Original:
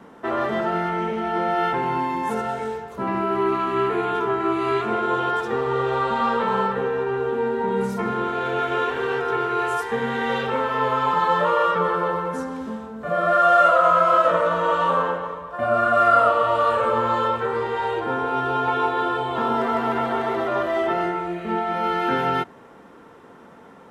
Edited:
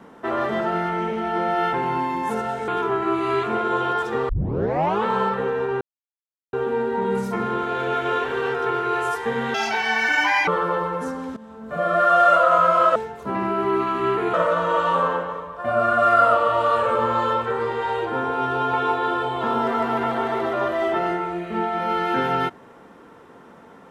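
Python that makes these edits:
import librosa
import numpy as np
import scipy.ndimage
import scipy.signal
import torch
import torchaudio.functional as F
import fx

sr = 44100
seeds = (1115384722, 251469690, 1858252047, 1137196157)

y = fx.edit(x, sr, fx.move(start_s=2.68, length_s=1.38, to_s=14.28),
    fx.tape_start(start_s=5.67, length_s=0.77),
    fx.insert_silence(at_s=7.19, length_s=0.72),
    fx.speed_span(start_s=10.2, length_s=1.6, speed=1.71),
    fx.fade_in_from(start_s=12.69, length_s=0.36, floor_db=-17.0), tone=tone)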